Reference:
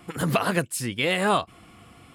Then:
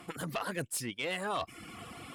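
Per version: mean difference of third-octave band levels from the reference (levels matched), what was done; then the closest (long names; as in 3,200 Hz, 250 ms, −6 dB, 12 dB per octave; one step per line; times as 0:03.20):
7.5 dB: reversed playback
downward compressor 5 to 1, threshold −39 dBFS, peak gain reduction 19.5 dB
reversed playback
reverb reduction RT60 0.74 s
harmonic generator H 2 −10 dB, 5 −18 dB, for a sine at −25.5 dBFS
low-shelf EQ 140 Hz −9.5 dB
level +3 dB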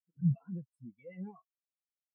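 23.0 dB: brickwall limiter −14.5 dBFS, peak gain reduction 4.5 dB
notch comb filter 610 Hz
wave folding −22.5 dBFS
every bin expanded away from the loudest bin 4 to 1
level +2.5 dB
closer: first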